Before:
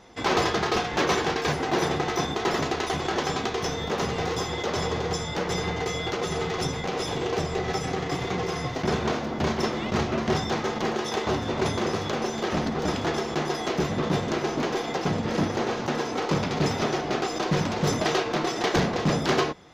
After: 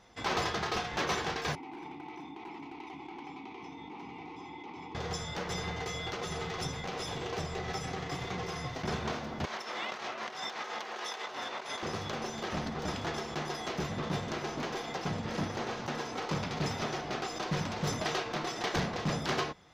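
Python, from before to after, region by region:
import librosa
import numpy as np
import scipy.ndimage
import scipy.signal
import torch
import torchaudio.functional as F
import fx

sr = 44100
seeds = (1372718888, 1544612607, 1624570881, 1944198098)

y = fx.chain(x, sr, fx.vowel_filter(vowel='u'),
    fx.clip_hard(threshold_db=-30.5),
    fx.env_flatten(amount_pct=70), at=(1.55, 4.95))
y = fx.chain(y, sr, fx.highpass(hz=470.0, slope=12),
    fx.over_compress(threshold_db=-34.0, ratio=-1.0),
    fx.peak_eq(hz=1800.0, db=3.5, octaves=2.7), at=(9.45, 11.83))
y = fx.peak_eq(y, sr, hz=350.0, db=-5.5, octaves=1.5)
y = fx.notch(y, sr, hz=6800.0, q=28.0)
y = F.gain(torch.from_numpy(y), -6.5).numpy()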